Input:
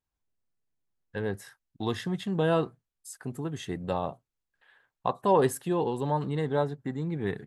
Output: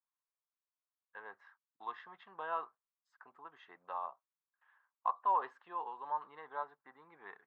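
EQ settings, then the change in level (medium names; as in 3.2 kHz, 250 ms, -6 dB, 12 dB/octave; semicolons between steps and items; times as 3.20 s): ladder band-pass 1.2 kHz, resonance 60%; distance through air 150 m; +2.5 dB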